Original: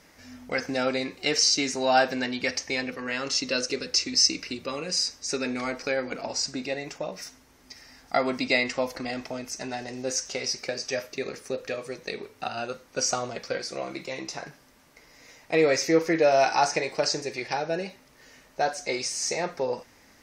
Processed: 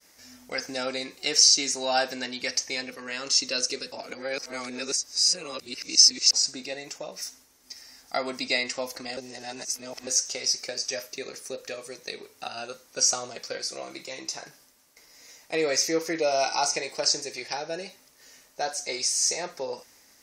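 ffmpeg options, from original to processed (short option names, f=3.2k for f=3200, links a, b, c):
-filter_complex "[0:a]asettb=1/sr,asplit=3[a][b][c];[a]atrim=end=16.204[d];[b]atrim=start=16.2:end=16.76,asetpts=PTS-STARTPTS,afade=t=in:d=0.004:c=qsin,afade=t=out:st=0.556:d=0.004:c=qsin,asuperstop=centerf=1700:order=8:qfactor=4.5[e];[c]atrim=start=16.756[f];[d][e]acrossfade=d=0.004:c1=hsin:c2=qsin[g];[g][f]acrossfade=d=0.004:c1=qsin:c2=hsin,asplit=5[h][i][j][k][l];[h]atrim=end=3.922[m];[i]atrim=start=3.918:end=6.332,asetpts=PTS-STARTPTS,areverse[n];[j]atrim=start=6.328:end=9.172[o];[k]atrim=start=9.168:end=10.072,asetpts=PTS-STARTPTS,areverse[p];[l]atrim=start=10.068[q];[m][n]acrossfade=d=0.004:c1=hsin:c2=hsin[r];[r][o]acrossfade=d=0.004:c1=hsin:c2=hsin[s];[s][p]acrossfade=d=0.004:c1=hsin:c2=hsin[t];[t][q]acrossfade=d=0.004:c1=hsin:c2=hsin,agate=range=-33dB:threshold=-54dB:ratio=3:detection=peak,bass=f=250:g=-6,treble=f=4k:g=12,volume=-4.5dB"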